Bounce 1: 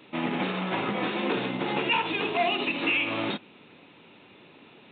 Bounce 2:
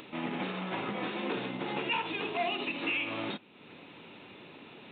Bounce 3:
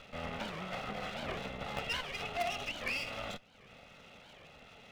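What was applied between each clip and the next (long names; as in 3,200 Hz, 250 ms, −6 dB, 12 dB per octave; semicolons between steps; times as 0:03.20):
upward compression, threshold −34 dBFS; level −6.5 dB
lower of the sound and its delayed copy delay 1.5 ms; in parallel at −11.5 dB: bit reduction 4 bits; on the sum: wow of a warped record 78 rpm, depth 250 cents; level −3 dB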